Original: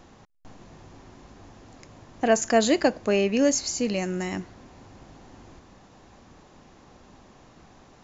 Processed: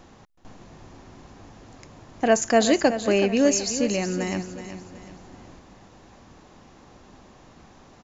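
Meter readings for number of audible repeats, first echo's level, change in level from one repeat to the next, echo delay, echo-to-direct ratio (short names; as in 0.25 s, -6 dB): 3, -11.0 dB, -8.5 dB, 0.374 s, -10.5 dB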